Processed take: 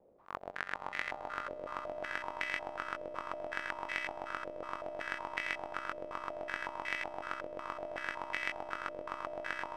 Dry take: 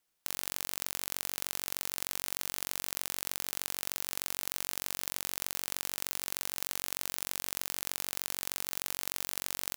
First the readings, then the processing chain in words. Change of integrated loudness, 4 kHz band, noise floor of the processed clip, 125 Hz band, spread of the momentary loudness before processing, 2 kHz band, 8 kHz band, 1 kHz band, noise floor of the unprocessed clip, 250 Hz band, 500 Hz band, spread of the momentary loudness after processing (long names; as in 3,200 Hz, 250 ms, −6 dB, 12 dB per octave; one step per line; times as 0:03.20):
−5.0 dB, −11.0 dB, −49 dBFS, −5.5 dB, 0 LU, +5.0 dB, −26.0 dB, +7.0 dB, −80 dBFS, +0.5 dB, +8.0 dB, 5 LU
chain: in parallel at −1.5 dB: decimation without filtering 27×
on the sum: low-shelf EQ 390 Hz −6.5 dB
volume swells 260 ms
echo that builds up and dies away 81 ms, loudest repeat 8, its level −11.5 dB
low-pass on a step sequencer 5.4 Hz 550–2,000 Hz
level +13 dB